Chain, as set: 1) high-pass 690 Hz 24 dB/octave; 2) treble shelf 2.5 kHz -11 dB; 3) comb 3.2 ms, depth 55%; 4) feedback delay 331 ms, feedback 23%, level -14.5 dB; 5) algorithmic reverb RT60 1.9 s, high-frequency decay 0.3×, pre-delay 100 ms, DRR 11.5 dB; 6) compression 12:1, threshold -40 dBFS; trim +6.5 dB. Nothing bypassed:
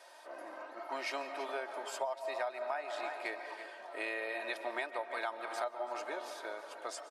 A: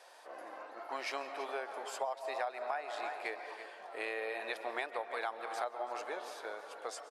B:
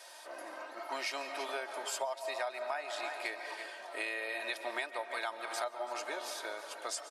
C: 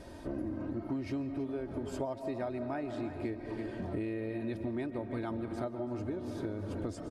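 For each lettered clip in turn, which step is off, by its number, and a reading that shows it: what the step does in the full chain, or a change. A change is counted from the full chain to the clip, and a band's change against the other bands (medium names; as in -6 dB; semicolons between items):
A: 3, 250 Hz band -2.0 dB; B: 2, 8 kHz band +8.0 dB; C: 1, 250 Hz band +25.0 dB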